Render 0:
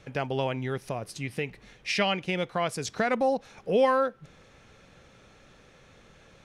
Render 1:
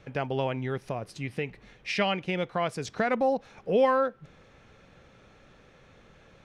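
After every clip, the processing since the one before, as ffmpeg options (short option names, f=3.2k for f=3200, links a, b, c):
-af "highshelf=f=5.4k:g=-11"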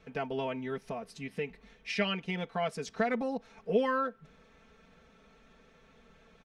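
-af "aecho=1:1:4.5:0.9,volume=-7dB"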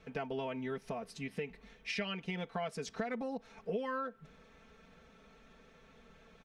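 -af "acompressor=threshold=-35dB:ratio=4"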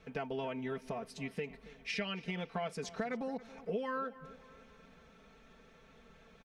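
-filter_complex "[0:a]asplit=2[a][b];[b]adelay=277,lowpass=f=3.8k:p=1,volume=-17dB,asplit=2[c][d];[d]adelay=277,lowpass=f=3.8k:p=1,volume=0.48,asplit=2[e][f];[f]adelay=277,lowpass=f=3.8k:p=1,volume=0.48,asplit=2[g][h];[h]adelay=277,lowpass=f=3.8k:p=1,volume=0.48[i];[a][c][e][g][i]amix=inputs=5:normalize=0"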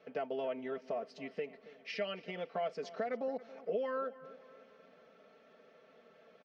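-af "highpass=320,equalizer=f=590:t=q:w=4:g=8,equalizer=f=950:t=q:w=4:g=-8,equalizer=f=1.6k:t=q:w=4:g=-4,equalizer=f=2.4k:t=q:w=4:g=-6,equalizer=f=3.7k:t=q:w=4:g=-8,lowpass=f=4.7k:w=0.5412,lowpass=f=4.7k:w=1.3066,volume=1dB"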